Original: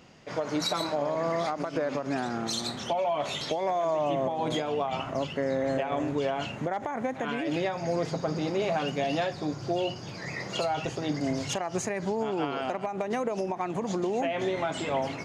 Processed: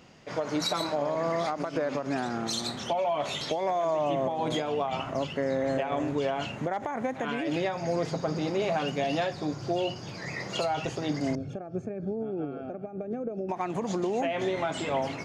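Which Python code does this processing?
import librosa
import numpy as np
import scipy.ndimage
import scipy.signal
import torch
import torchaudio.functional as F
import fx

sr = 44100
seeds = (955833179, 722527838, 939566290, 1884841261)

y = fx.moving_average(x, sr, points=45, at=(11.35, 13.49))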